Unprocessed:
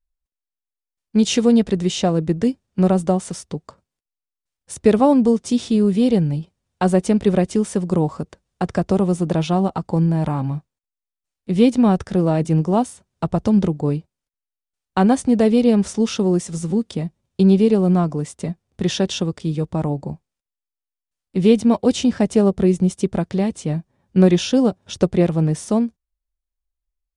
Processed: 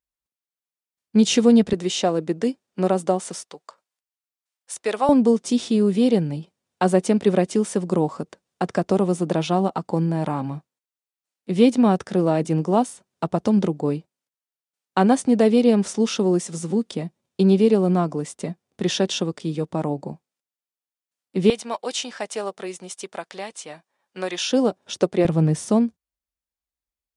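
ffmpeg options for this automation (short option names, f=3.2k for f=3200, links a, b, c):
-af "asetnsamples=n=441:p=0,asendcmd='1.73 highpass f 300;3.44 highpass f 730;5.09 highpass f 210;21.5 highpass f 840;24.5 highpass f 300;25.25 highpass f 93',highpass=110"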